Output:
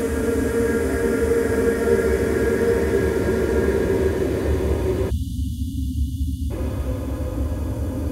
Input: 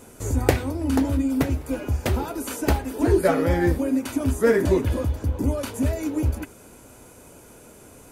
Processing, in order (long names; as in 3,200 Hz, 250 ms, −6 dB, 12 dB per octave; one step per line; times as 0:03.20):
extreme stretch with random phases 7.9×, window 1.00 s, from 0:04.26
time-frequency box erased 0:05.10–0:06.51, 290–2,800 Hz